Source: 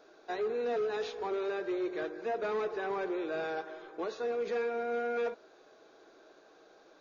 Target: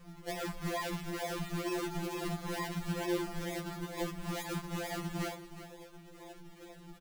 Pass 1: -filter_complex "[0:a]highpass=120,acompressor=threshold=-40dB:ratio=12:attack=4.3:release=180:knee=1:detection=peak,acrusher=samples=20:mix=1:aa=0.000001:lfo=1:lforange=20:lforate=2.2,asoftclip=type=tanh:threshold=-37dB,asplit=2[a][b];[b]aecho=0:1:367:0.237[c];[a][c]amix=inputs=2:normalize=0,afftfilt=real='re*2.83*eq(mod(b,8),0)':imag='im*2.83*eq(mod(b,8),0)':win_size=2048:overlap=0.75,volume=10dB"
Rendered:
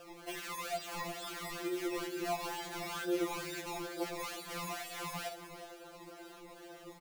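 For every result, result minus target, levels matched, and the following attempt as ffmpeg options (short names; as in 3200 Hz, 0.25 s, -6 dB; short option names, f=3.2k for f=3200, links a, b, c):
decimation with a swept rate: distortion -22 dB; soft clip: distortion +15 dB
-filter_complex "[0:a]highpass=120,acompressor=threshold=-40dB:ratio=12:attack=4.3:release=180:knee=1:detection=peak,acrusher=samples=59:mix=1:aa=0.000001:lfo=1:lforange=59:lforate=2.2,asoftclip=type=tanh:threshold=-37dB,asplit=2[a][b];[b]aecho=0:1:367:0.237[c];[a][c]amix=inputs=2:normalize=0,afftfilt=real='re*2.83*eq(mod(b,8),0)':imag='im*2.83*eq(mod(b,8),0)':win_size=2048:overlap=0.75,volume=10dB"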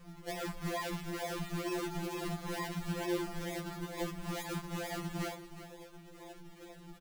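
soft clip: distortion +15 dB
-filter_complex "[0:a]highpass=120,acompressor=threshold=-40dB:ratio=12:attack=4.3:release=180:knee=1:detection=peak,acrusher=samples=59:mix=1:aa=0.000001:lfo=1:lforange=59:lforate=2.2,asoftclip=type=tanh:threshold=-28.5dB,asplit=2[a][b];[b]aecho=0:1:367:0.237[c];[a][c]amix=inputs=2:normalize=0,afftfilt=real='re*2.83*eq(mod(b,8),0)':imag='im*2.83*eq(mod(b,8),0)':win_size=2048:overlap=0.75,volume=10dB"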